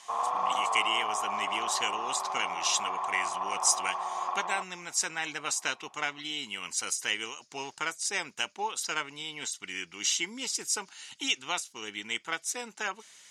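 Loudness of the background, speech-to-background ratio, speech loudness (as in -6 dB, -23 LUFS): -32.5 LUFS, 0.5 dB, -32.0 LUFS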